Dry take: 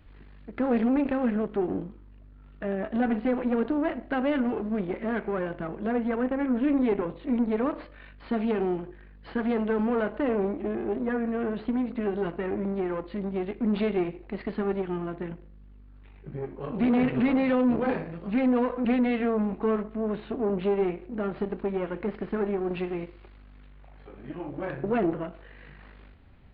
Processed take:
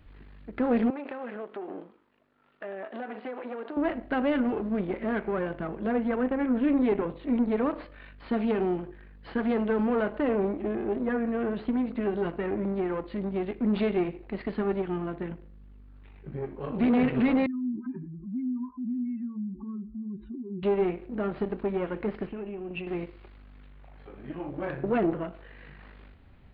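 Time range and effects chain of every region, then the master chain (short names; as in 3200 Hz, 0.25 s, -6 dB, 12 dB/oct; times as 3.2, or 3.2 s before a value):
0.9–3.77 HPF 470 Hz + compressor 4:1, threshold -33 dBFS + air absorption 66 m
17.46–20.63 spectral contrast raised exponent 2.6 + Chebyshev band-stop 380–890 Hz, order 5 + compressor 1.5:1, threshold -40 dBFS
22.27–22.87 bell 1900 Hz -11.5 dB 2.4 oct + compressor 2.5:1, threshold -37 dBFS + synth low-pass 2700 Hz, resonance Q 8.3
whole clip: dry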